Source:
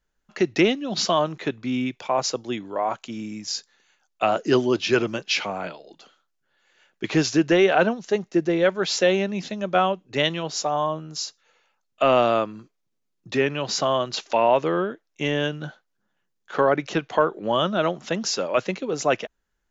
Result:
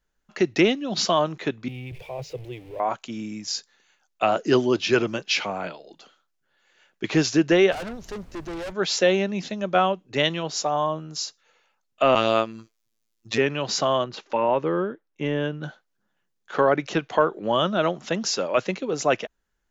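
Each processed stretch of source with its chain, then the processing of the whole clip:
1.68–2.8 zero-crossing step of -30 dBFS + EQ curve 150 Hz 0 dB, 210 Hz -27 dB, 300 Hz -14 dB, 460 Hz -5 dB, 1300 Hz -26 dB, 2400 Hz -9 dB, 4400 Hz -19 dB, 7100 Hz -23 dB, 11000 Hz -19 dB
7.71–8.71 tube stage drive 31 dB, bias 0.65 + added noise brown -44 dBFS
12.15–13.38 high shelf 2300 Hz +10.5 dB + robotiser 112 Hz + Doppler distortion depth 0.19 ms
14.04–15.63 LPF 1300 Hz 6 dB/oct + notch 680 Hz, Q 5.4
whole clip: dry

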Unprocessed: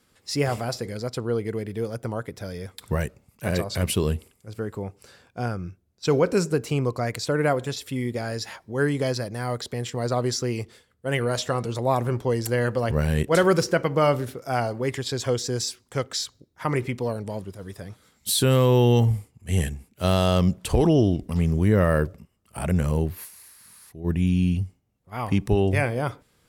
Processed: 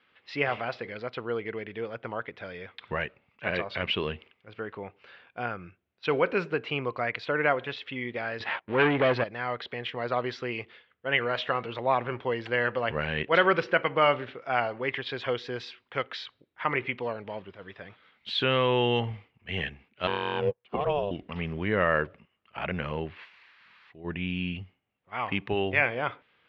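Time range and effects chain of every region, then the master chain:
8.4–9.24 high shelf 2300 Hz -11.5 dB + sample leveller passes 3
20.07–21.11 small resonant body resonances 200/760/1400/2500 Hz, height 7 dB, ringing for 25 ms + ring modulator 300 Hz + upward expander 2.5:1, over -35 dBFS
whole clip: steep low-pass 3000 Hz 36 dB/oct; tilt +4.5 dB/oct

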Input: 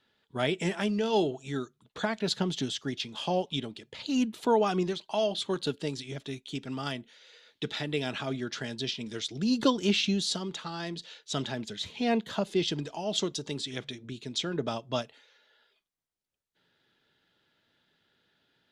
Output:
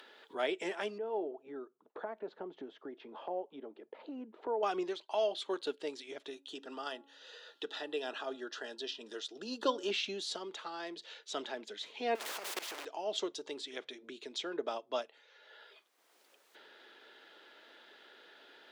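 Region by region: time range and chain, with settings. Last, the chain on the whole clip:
0.98–4.63 LPF 1000 Hz + compressor 1.5:1, threshold -36 dBFS
6.3–9.91 Butterworth band-stop 2200 Hz, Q 4.1 + low shelf 110 Hz -10 dB + de-hum 278.4 Hz, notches 5
12.15–12.85 zero-crossing step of -31.5 dBFS + level quantiser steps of 22 dB + spectral compressor 4:1
whole clip: HPF 350 Hz 24 dB/oct; high shelf 3600 Hz -9.5 dB; upward compressor, threshold -38 dBFS; gain -3 dB

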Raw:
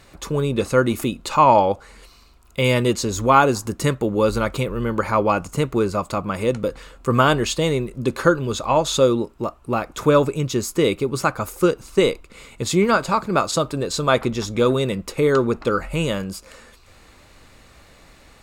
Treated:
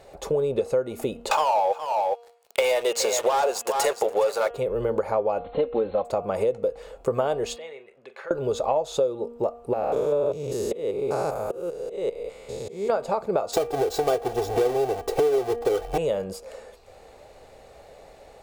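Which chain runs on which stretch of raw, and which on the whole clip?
1.31–4.51 HPF 930 Hz + sample leveller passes 5 + echo 0.414 s -12.5 dB
5.38–6.05 CVSD 32 kbps + brick-wall FIR low-pass 4300 Hz + comb 3.8 ms, depth 80%
7.56–8.31 compressor 2.5:1, threshold -26 dBFS + band-pass 2000 Hz, Q 2.1 + doubler 43 ms -12.5 dB
9.73–12.9 stepped spectrum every 0.2 s + auto swell 0.412 s
13.53–15.98 half-waves squared off + comb 2.6 ms, depth 75%
whole clip: band shelf 580 Hz +15 dB 1.3 oct; de-hum 236.3 Hz, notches 14; compressor 6:1, threshold -15 dBFS; gain -6 dB

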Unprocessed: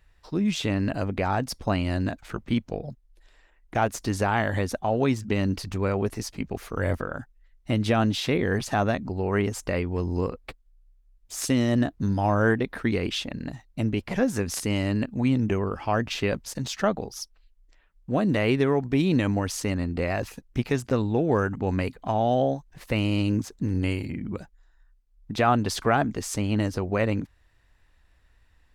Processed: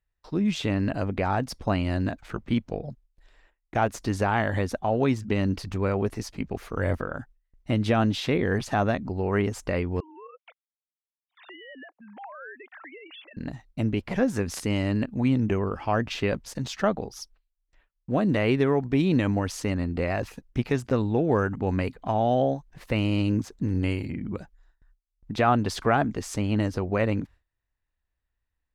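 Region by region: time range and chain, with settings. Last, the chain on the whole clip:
10–13.37 sine-wave speech + HPF 790 Hz + compressor 2.5:1, threshold -46 dBFS
whole clip: high shelf 5100 Hz -7 dB; gate with hold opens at -49 dBFS

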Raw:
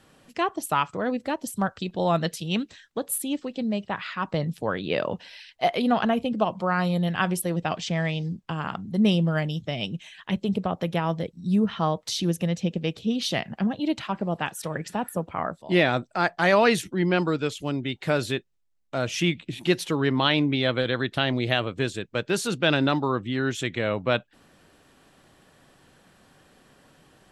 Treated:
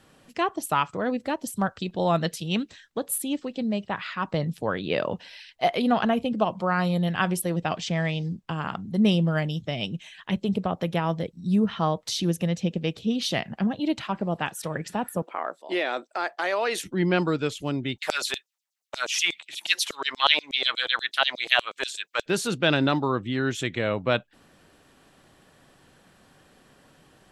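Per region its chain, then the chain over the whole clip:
15.22–16.84 HPF 330 Hz 24 dB/oct + compressor 3:1, threshold -23 dBFS
17.98–22.26 high shelf 4000 Hz +5.5 dB + LFO high-pass saw down 8.3 Hz 560–7100 Hz
whole clip: dry

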